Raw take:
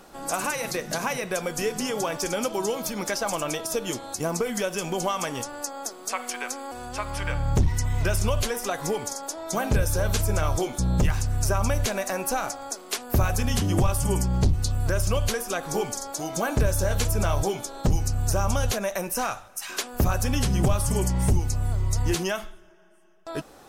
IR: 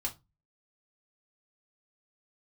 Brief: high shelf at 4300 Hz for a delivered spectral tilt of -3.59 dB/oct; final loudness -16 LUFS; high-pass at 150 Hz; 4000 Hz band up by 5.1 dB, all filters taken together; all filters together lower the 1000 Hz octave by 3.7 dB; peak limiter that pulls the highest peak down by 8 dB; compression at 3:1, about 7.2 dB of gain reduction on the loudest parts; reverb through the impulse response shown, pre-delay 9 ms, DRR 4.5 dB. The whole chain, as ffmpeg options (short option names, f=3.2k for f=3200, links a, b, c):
-filter_complex "[0:a]highpass=150,equalizer=f=1k:t=o:g=-5.5,equalizer=f=4k:t=o:g=4,highshelf=f=4.3k:g=5,acompressor=threshold=-31dB:ratio=3,alimiter=limit=-22dB:level=0:latency=1,asplit=2[a][b];[1:a]atrim=start_sample=2205,adelay=9[c];[b][c]afir=irnorm=-1:irlink=0,volume=-6.5dB[d];[a][d]amix=inputs=2:normalize=0,volume=16.5dB"